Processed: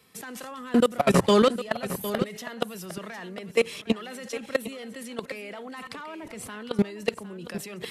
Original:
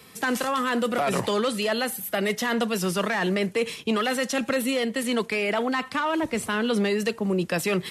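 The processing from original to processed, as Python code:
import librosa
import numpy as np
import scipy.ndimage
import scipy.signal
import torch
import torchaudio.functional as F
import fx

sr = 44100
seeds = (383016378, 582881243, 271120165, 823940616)

y = fx.low_shelf(x, sr, hz=230.0, db=8.5, at=(0.51, 2.23))
y = fx.level_steps(y, sr, step_db=22)
y = y + 10.0 ** (-12.5 / 20.0) * np.pad(y, (int(757 * sr / 1000.0), 0))[:len(y)]
y = F.gain(torch.from_numpy(y), 5.0).numpy()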